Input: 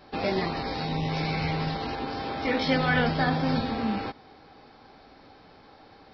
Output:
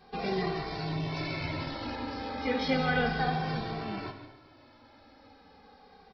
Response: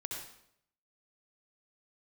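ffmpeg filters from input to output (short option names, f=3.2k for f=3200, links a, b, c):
-filter_complex "[0:a]asplit=2[a][b];[1:a]atrim=start_sample=2205,adelay=70[c];[b][c]afir=irnorm=-1:irlink=0,volume=-7.5dB[d];[a][d]amix=inputs=2:normalize=0,asplit=2[e][f];[f]adelay=2.1,afreqshift=-0.33[g];[e][g]amix=inputs=2:normalize=1,volume=-2dB"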